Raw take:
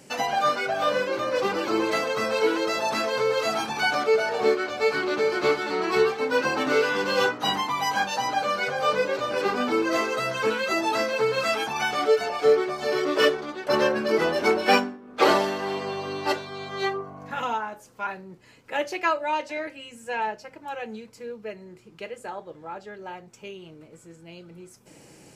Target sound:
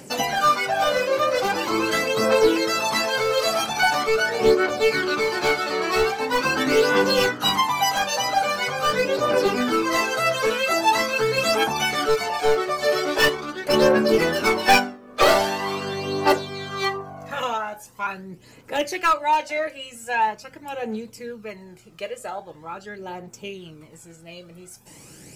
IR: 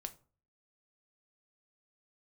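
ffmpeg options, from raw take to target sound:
-af "aeval=exprs='clip(val(0),-1,0.133)':c=same,aphaser=in_gain=1:out_gain=1:delay=1.8:decay=0.51:speed=0.43:type=triangular,crystalizer=i=1:c=0,volume=2.5dB"

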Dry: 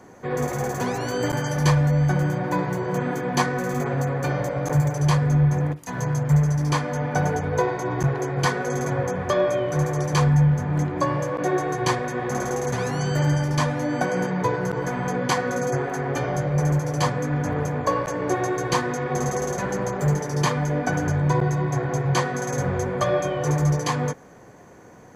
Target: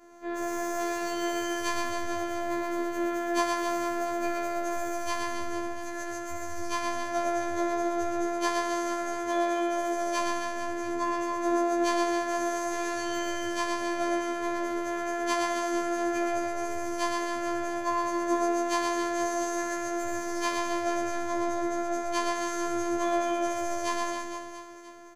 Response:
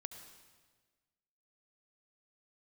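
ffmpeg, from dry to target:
-filter_complex "[0:a]bandreject=f=990:w=25,asettb=1/sr,asplit=3[a][b][c];[a]atrim=end=8.534[d];[b]atrim=start=8.53:end=10.65,asetpts=PTS-STARTPTS,afade=t=in:d=0.004:c=qsin,afade=t=out:st=2.116:d=0.004:c=qsin,highpass=140[e];[c]atrim=start=10.646[f];[d][e]acrossfade=d=0.004:c1=hsin:c2=qsin[g];[g][f]acrossfade=d=0.004:c1=qsin:c2=hsin,bandreject=f=50:t=h:w=6,bandreject=f=100:t=h:w=6,bandreject=f=150:t=h:w=6,bandreject=f=200:t=h:w=6,bandreject=f=250:t=h:w=6,aecho=1:1:120|270|457.5|691.9|984.8:0.631|0.398|0.251|0.158|0.1[h];[1:a]atrim=start_sample=2205,asetrate=48510,aresample=44100[i];[h][i]afir=irnorm=-1:irlink=0,afftfilt=real='hypot(re,im)*cos(PI*b)':imag='0':win_size=512:overlap=0.75,afftfilt=real='re*2*eq(mod(b,4),0)':imag='im*2*eq(mod(b,4),0)':win_size=2048:overlap=0.75"

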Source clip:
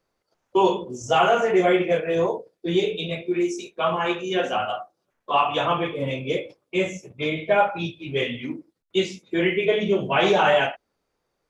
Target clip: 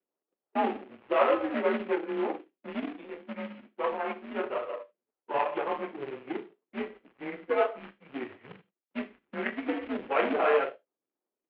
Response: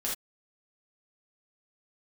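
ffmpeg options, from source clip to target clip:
-filter_complex "[0:a]aeval=exprs='if(lt(val(0),0),0.447*val(0),val(0))':c=same,adynamicsmooth=sensitivity=1:basefreq=660,acrossover=split=470[a][b];[a]aeval=exprs='val(0)*(1-0.5/2+0.5/2*cos(2*PI*2.8*n/s))':c=same[c];[b]aeval=exprs='val(0)*(1-0.5/2-0.5/2*cos(2*PI*2.8*n/s))':c=same[d];[c][d]amix=inputs=2:normalize=0,acrusher=bits=3:mode=log:mix=0:aa=0.000001,asplit=2[e][f];[1:a]atrim=start_sample=2205,highshelf=f=3.6k:g=11[g];[f][g]afir=irnorm=-1:irlink=0,volume=-21.5dB[h];[e][h]amix=inputs=2:normalize=0,highpass=f=480:t=q:w=0.5412,highpass=f=480:t=q:w=1.307,lowpass=f=3k:t=q:w=0.5176,lowpass=f=3k:t=q:w=0.7071,lowpass=f=3k:t=q:w=1.932,afreqshift=-140,volume=-1dB"

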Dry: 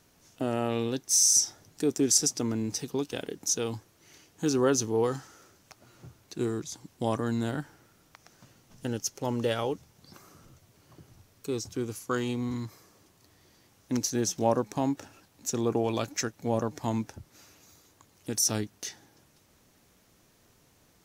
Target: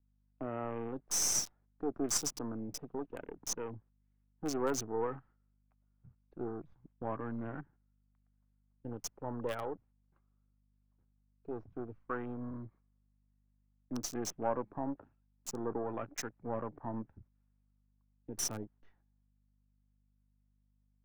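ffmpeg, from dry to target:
-filter_complex "[0:a]aeval=exprs='if(lt(val(0),0),0.447*val(0),val(0))':c=same,agate=range=-12dB:threshold=-52dB:ratio=16:detection=peak,equalizer=f=1.1k:w=0.76:g=5,afwtdn=0.00794,aeval=exprs='val(0)+0.000562*(sin(2*PI*50*n/s)+sin(2*PI*2*50*n/s)/2+sin(2*PI*3*50*n/s)/3+sin(2*PI*4*50*n/s)/4+sin(2*PI*5*50*n/s)/5)':c=same,acrossover=split=240|2500[a][b][c];[c]acrusher=bits=5:mix=0:aa=0.000001[d];[a][b][d]amix=inputs=3:normalize=0,volume=-7.5dB"

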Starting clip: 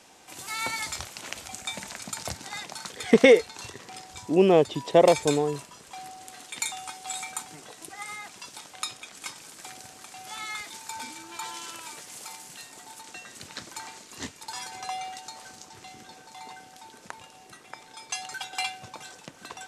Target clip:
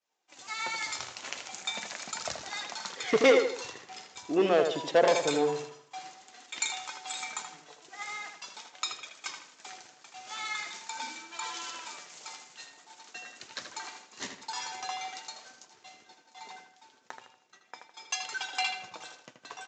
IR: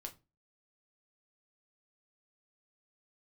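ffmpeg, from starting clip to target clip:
-filter_complex "[0:a]aresample=16000,asoftclip=type=tanh:threshold=-14dB,aresample=44100,highpass=f=480:p=1,agate=range=-33dB:threshold=-41dB:ratio=3:detection=peak,flanger=delay=1.5:depth=6.8:regen=61:speed=0.44:shape=triangular,asplit=2[a][b];[b]adelay=79,lowpass=f=3.7k:p=1,volume=-6dB,asplit=2[c][d];[d]adelay=79,lowpass=f=3.7k:p=1,volume=0.4,asplit=2[e][f];[f]adelay=79,lowpass=f=3.7k:p=1,volume=0.4,asplit=2[g][h];[h]adelay=79,lowpass=f=3.7k:p=1,volume=0.4,asplit=2[i][j];[j]adelay=79,lowpass=f=3.7k:p=1,volume=0.4[k];[c][e][g][i][k]amix=inputs=5:normalize=0[l];[a][l]amix=inputs=2:normalize=0,dynaudnorm=f=260:g=7:m=4.5dB"

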